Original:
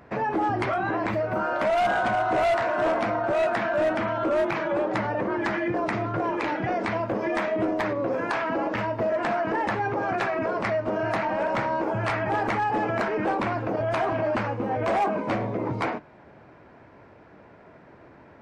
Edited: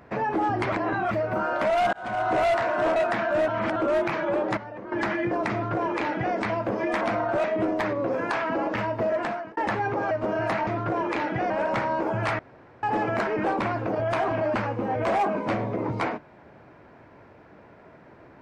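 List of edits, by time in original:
0.72–1.11 reverse
1.93–2.27 fade in
2.96–3.39 move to 7.44
3.91–4.19 reverse
5–5.35 gain -11.5 dB
5.95–6.78 copy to 11.31
9.16–9.57 fade out
10.11–10.75 cut
12.2–12.64 room tone

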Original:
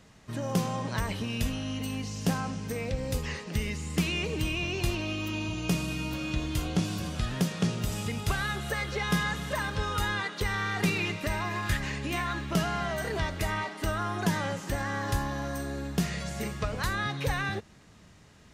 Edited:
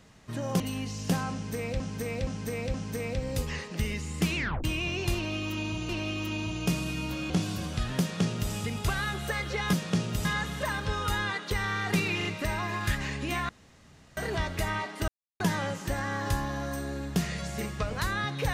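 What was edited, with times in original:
0.6–1.77 cut
2.5–2.97 loop, 4 plays
4.12 tape stop 0.28 s
4.91–5.65 loop, 2 plays
6.32–6.72 cut
7.42–7.94 copy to 9.15
11.07 stutter 0.04 s, 3 plays
12.31–12.99 room tone
13.9–14.22 mute

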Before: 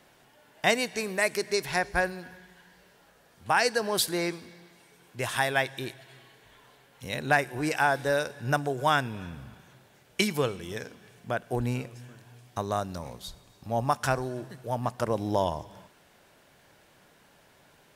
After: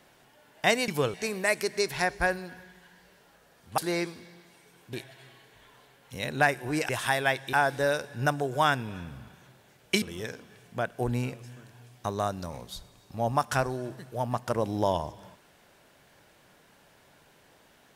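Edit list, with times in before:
3.52–4.04 cut
5.19–5.83 move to 7.79
10.28–10.54 move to 0.88

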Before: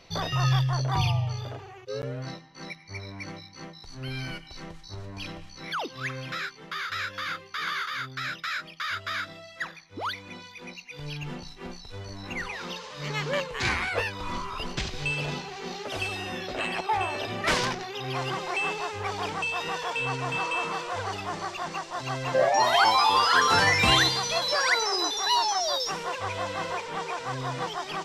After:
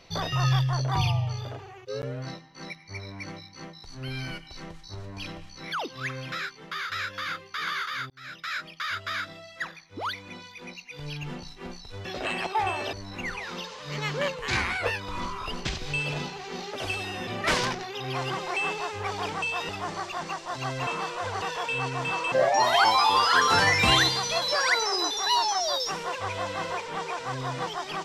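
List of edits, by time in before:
8.1–8.57 fade in
16.39–17.27 move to 12.05
19.69–20.59 swap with 21.14–22.32

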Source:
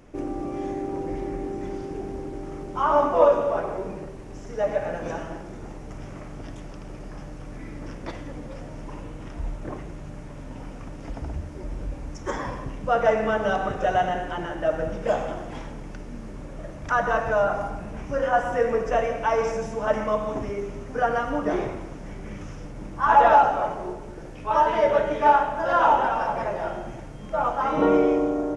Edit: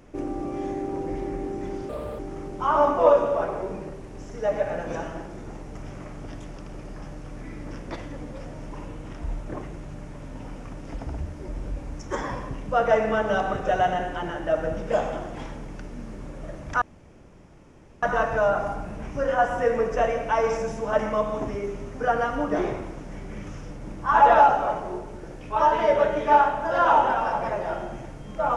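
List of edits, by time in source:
1.89–2.34 speed 152%
16.97 insert room tone 1.21 s

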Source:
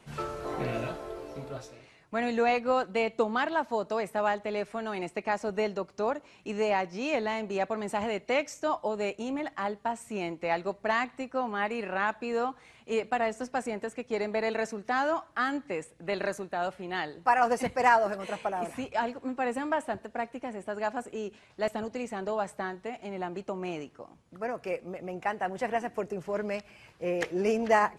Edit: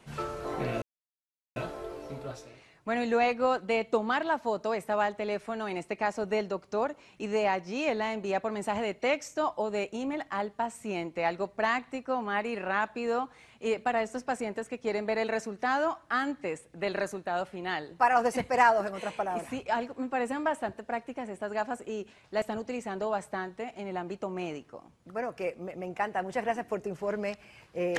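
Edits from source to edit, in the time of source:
0.82 insert silence 0.74 s

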